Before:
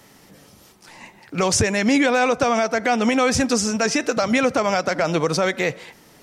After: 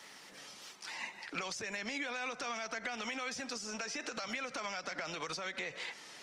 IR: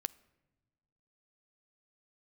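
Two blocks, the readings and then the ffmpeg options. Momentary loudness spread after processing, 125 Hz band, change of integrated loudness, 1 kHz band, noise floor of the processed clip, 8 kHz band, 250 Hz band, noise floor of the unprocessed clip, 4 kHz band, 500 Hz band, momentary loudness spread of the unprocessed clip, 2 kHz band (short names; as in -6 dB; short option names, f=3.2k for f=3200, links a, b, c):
7 LU, -27.5 dB, -20.0 dB, -19.5 dB, -54 dBFS, -18.5 dB, -25.5 dB, -51 dBFS, -14.0 dB, -24.5 dB, 5 LU, -15.0 dB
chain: -filter_complex "[0:a]acompressor=threshold=-19dB:ratio=6,tiltshelf=f=750:g=-9,alimiter=limit=-16.5dB:level=0:latency=1:release=84,highpass=170,acrossover=split=260|1200[a][b][c];[a]acompressor=threshold=-47dB:ratio=4[d];[b]acompressor=threshold=-41dB:ratio=4[e];[c]acompressor=threshold=-35dB:ratio=4[f];[d][e][f]amix=inputs=3:normalize=0,lowpass=6.1k,volume=-4dB" -ar 48000 -c:a libopus -b:a 24k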